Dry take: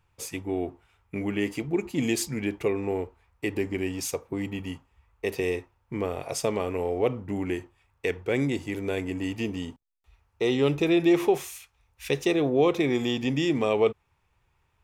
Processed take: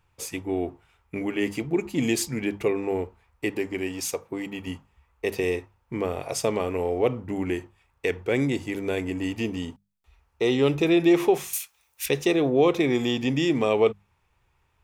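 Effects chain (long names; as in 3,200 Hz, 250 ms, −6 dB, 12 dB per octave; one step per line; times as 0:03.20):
0:11.53–0:12.06: RIAA equalisation recording
mains-hum notches 50/100/150/200 Hz
0:03.51–0:04.67: low-shelf EQ 210 Hz −7.5 dB
level +2 dB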